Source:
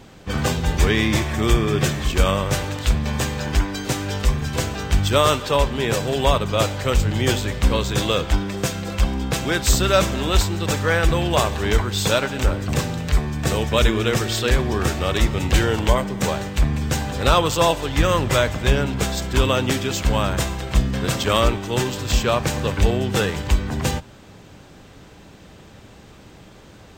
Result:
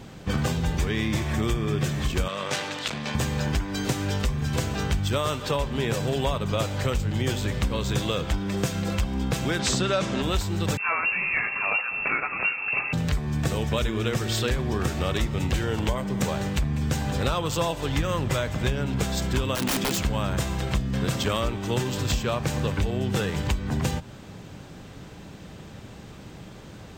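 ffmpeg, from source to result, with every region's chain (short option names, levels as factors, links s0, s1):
-filter_complex "[0:a]asettb=1/sr,asplit=3[s0][s1][s2];[s0]atrim=end=2.284[s3];[s1]atrim=start=2.28:end=3.15,asetpts=PTS-STARTPTS,afade=t=in:d=0.004:c=qsin,afade=t=out:st=0.866:d=0.004:c=qsin,aeval=exprs='(tanh(4.47*val(0)+0.45)-tanh(0.45))/4.47':c=same,highpass=140,lowpass=3700,aemphasis=mode=production:type=riaa[s4];[s2]atrim=start=3.146[s5];[s3][s4]acrossfade=d=0.004:c1=hsin:c2=qsin[s6];[s6][s5]acrossfade=d=0.004:c1=qsin:c2=hsin,asettb=1/sr,asplit=3[s7][s8][s9];[s7]atrim=end=9.594[s10];[s8]atrim=start=9.59:end=10.22,asetpts=PTS-STARTPTS,afade=t=in:d=0.004:c=qsin,afade=t=out:st=0.626:d=0.004:c=qsin,highpass=140,lowpass=6700,acontrast=26[s11];[s9]atrim=start=10.216[s12];[s10][s11]acrossfade=d=0.004:c1=hsin:c2=qsin[s13];[s13][s12]acrossfade=d=0.004:c1=qsin:c2=hsin,asettb=1/sr,asplit=3[s14][s15][s16];[s14]atrim=end=10.774[s17];[s15]atrim=start=10.77:end=12.93,asetpts=PTS-STARTPTS,afade=t=in:d=0.004:c=qsin,afade=t=out:st=2.156:d=0.004:c=qsin,adynamicequalizer=threshold=0.0158:dfrequency=2000:dqfactor=0.95:tfrequency=2000:tqfactor=0.95:attack=5:release=100:ratio=0.375:range=3:mode=boostabove:tftype=bell,flanger=delay=0.4:depth=5.4:regen=-64:speed=1:shape=sinusoidal,lowpass=f=2400:t=q:w=0.5098,lowpass=f=2400:t=q:w=0.6013,lowpass=f=2400:t=q:w=0.9,lowpass=f=2400:t=q:w=2.563,afreqshift=-2800[s18];[s16]atrim=start=12.926[s19];[s17][s18]acrossfade=d=0.004:c1=hsin:c2=qsin[s20];[s20][s19]acrossfade=d=0.004:c1=qsin:c2=hsin,asettb=1/sr,asplit=3[s21][s22][s23];[s21]atrim=end=19.554[s24];[s22]atrim=start=19.55:end=19.99,asetpts=PTS-STARTPTS,afade=t=in:d=0.004:c=qsin,afade=t=out:st=0.436:d=0.004:c=qsin,highpass=f=160:w=0.5412,highpass=f=160:w=1.3066,bass=f=250:g=5,treble=f=4000:g=1,aeval=exprs='(mod(5.96*val(0)+1,2)-1)/5.96':c=same[s25];[s23]atrim=start=19.986[s26];[s24][s25]acrossfade=d=0.004:c1=hsin:c2=qsin[s27];[s27][s26]acrossfade=d=0.004:c1=qsin:c2=hsin,equalizer=f=150:t=o:w=1.3:g=5,acompressor=threshold=0.0794:ratio=6"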